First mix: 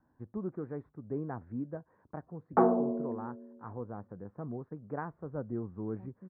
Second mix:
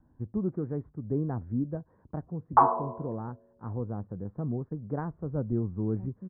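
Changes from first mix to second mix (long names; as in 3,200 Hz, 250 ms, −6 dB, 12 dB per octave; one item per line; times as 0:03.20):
background: add high-pass with resonance 1,000 Hz, resonance Q 8.1
master: add spectral tilt −3.5 dB per octave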